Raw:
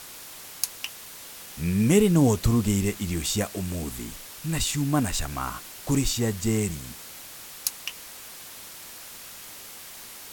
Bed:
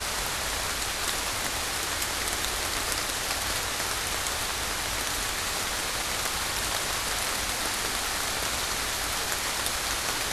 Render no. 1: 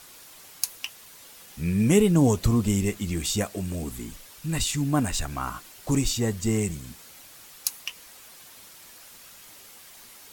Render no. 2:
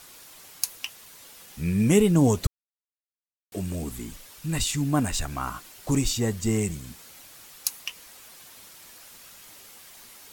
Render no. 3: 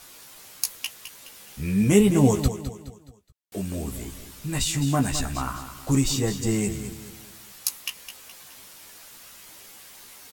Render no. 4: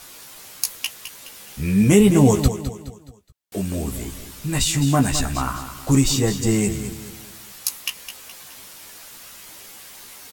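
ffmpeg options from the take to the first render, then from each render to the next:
-af "afftdn=nr=7:nf=-43"
-filter_complex "[0:a]asplit=3[a][b][c];[a]atrim=end=2.47,asetpts=PTS-STARTPTS,afade=t=out:st=2.466:d=0.004:c=hsin[d];[b]atrim=start=2.47:end=3.52,asetpts=PTS-STARTPTS,volume=0[e];[c]atrim=start=3.52,asetpts=PTS-STARTPTS,afade=t=in:d=0.004:c=hsin[f];[d][e][f]concat=n=3:v=0:a=1"
-filter_complex "[0:a]asplit=2[a][b];[b]adelay=15,volume=-5dB[c];[a][c]amix=inputs=2:normalize=0,aecho=1:1:210|420|630|840:0.282|0.113|0.0451|0.018"
-af "volume=5dB,alimiter=limit=-3dB:level=0:latency=1"

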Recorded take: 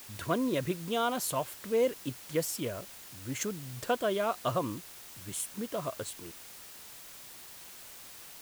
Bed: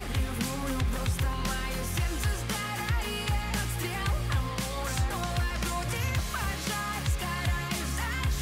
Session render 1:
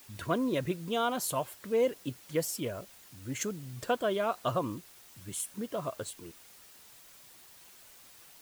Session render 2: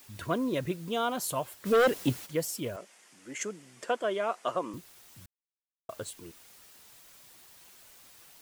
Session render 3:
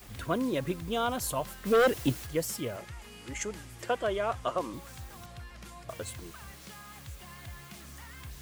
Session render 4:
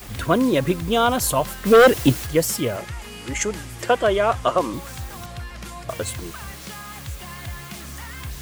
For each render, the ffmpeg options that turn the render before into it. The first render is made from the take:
-af "afftdn=nr=7:nf=-49"
-filter_complex "[0:a]asplit=3[a][b][c];[a]afade=t=out:st=1.65:d=0.02[d];[b]aeval=exprs='0.119*sin(PI/2*2.24*val(0)/0.119)':c=same,afade=t=in:st=1.65:d=0.02,afade=t=out:st=2.25:d=0.02[e];[c]afade=t=in:st=2.25:d=0.02[f];[d][e][f]amix=inputs=3:normalize=0,asettb=1/sr,asplit=3[g][h][i];[g]atrim=end=2.764[j];[h]atrim=start=2.76:end=4.74,asetpts=PTS-STARTPTS,afade=t=in:d=0.004:c=qsin,afade=t=out:st=1.976:d=0.004:c=qsin,highpass=f=220:w=0.5412,highpass=f=220:w=1.3066,equalizer=f=260:t=q:w=4:g=-6,equalizer=f=2k:t=q:w=4:g=4,equalizer=f=4k:t=q:w=4:g=-7,lowpass=f=9.5k:w=0.5412,lowpass=f=9.5k:w=1.3066[k];[i]atrim=start=4.736[l];[j][k]acrossfade=d=0.004:c1=hsin:c2=qsin[m];[m][l]acrossfade=d=0.004:c1=qsin:c2=hsin,asplit=3[n][o][p];[n]atrim=end=5.26,asetpts=PTS-STARTPTS,afade=t=out:st=5.256:d=0.004:c=hsin[q];[o]atrim=start=5.26:end=5.89,asetpts=PTS-STARTPTS,volume=0[r];[p]atrim=start=5.89,asetpts=PTS-STARTPTS,afade=t=in:d=0.004:c=hsin[s];[q][r][s]concat=n=3:v=0:a=1"
-filter_complex "[1:a]volume=-16.5dB[a];[0:a][a]amix=inputs=2:normalize=0"
-af "volume=11.5dB"

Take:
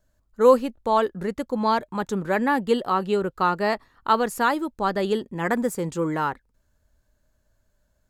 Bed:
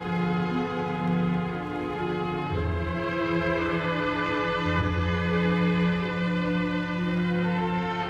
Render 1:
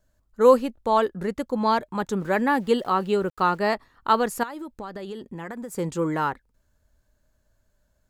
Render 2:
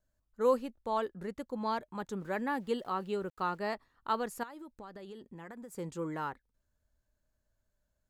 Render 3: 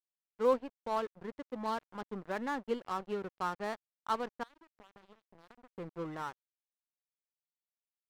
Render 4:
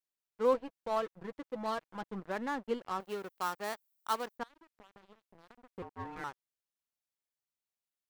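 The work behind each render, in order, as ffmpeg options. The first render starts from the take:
-filter_complex "[0:a]asplit=3[a][b][c];[a]afade=t=out:st=2.19:d=0.02[d];[b]aeval=exprs='val(0)*gte(abs(val(0)),0.00398)':c=same,afade=t=in:st=2.19:d=0.02,afade=t=out:st=3.57:d=0.02[e];[c]afade=t=in:st=3.57:d=0.02[f];[d][e][f]amix=inputs=3:normalize=0,asettb=1/sr,asplit=3[g][h][i];[g]atrim=end=4.434[j];[h]atrim=start=4.43:end=5.78,asetpts=PTS-STARTPTS,afade=t=in:d=0.004:c=qsin,afade=t=out:st=1.346:d=0.004:c=qsin,acompressor=threshold=-31dB:ratio=10:attack=3.2:release=140:knee=1:detection=peak[k];[i]atrim=start=5.776[l];[j][k]acrossfade=d=0.004:c1=hsin:c2=qsin[m];[m][l]acrossfade=d=0.004:c1=qsin:c2=hsin"
-af "volume=-12dB"
-af "adynamicsmooth=sensitivity=5.5:basefreq=2.2k,aeval=exprs='sgn(val(0))*max(abs(val(0))-0.00596,0)':c=same"
-filter_complex "[0:a]asettb=1/sr,asplit=3[a][b][c];[a]atrim=end=0.544[d];[b]atrim=start=0.54:end=2.2,asetpts=PTS-STARTPTS,afade=t=in:d=0.004:c=qsin,afade=t=out:st=1.656:d=0.004:c=qsin,aecho=1:1:6.1:0.49,atrim=end_sample=73206[e];[c]atrim=start=2.196[f];[d][e]acrossfade=d=0.004:c1=hsin:c2=qsin[g];[g][f]acrossfade=d=0.004:c1=qsin:c2=hsin,asettb=1/sr,asplit=3[h][i][j];[h]atrim=end=3.004[k];[i]atrim=start=3:end=4.38,asetpts=PTS-STARTPTS,afade=t=in:d=0.004:c=qsin,afade=t=out:st=1.376:d=0.004:c=qsin,aemphasis=mode=production:type=bsi[l];[j]atrim=start=4.376[m];[k][l]acrossfade=d=0.004:c1=hsin:c2=qsin[n];[n][m]acrossfade=d=0.004:c1=qsin:c2=hsin,asettb=1/sr,asplit=3[o][p][q];[o]atrim=end=5.824[r];[p]atrim=start=5.82:end=6.24,asetpts=PTS-STARTPTS,afade=t=in:d=0.004:c=qsin,afade=t=out:st=0.416:d=0.004:c=qsin,aeval=exprs='val(0)*sin(2*PI*600*n/s)':c=same[s];[q]atrim=start=6.236[t];[r][s]acrossfade=d=0.004:c1=hsin:c2=qsin[u];[u][t]acrossfade=d=0.004:c1=qsin:c2=hsin"

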